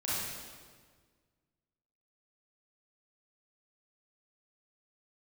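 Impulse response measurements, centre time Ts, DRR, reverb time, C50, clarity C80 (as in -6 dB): 0.119 s, -9.5 dB, 1.6 s, -4.0 dB, -0.5 dB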